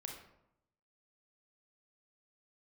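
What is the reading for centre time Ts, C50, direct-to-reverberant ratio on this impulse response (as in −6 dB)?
34 ms, 4.5 dB, 1.0 dB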